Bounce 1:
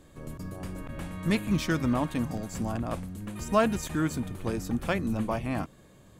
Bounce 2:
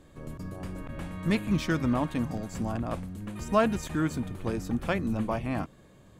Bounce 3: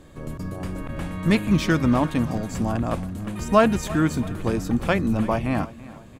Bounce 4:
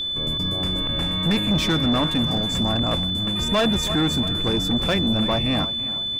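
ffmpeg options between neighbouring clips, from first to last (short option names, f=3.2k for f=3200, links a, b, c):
-af "highshelf=f=6k:g=-6.5"
-af "aecho=1:1:334|668|1002|1336:0.119|0.0535|0.0241|0.0108,volume=7dB"
-af "asoftclip=type=tanh:threshold=-21dB,aeval=exprs='val(0)+0.0398*sin(2*PI*3500*n/s)':c=same,volume=4dB"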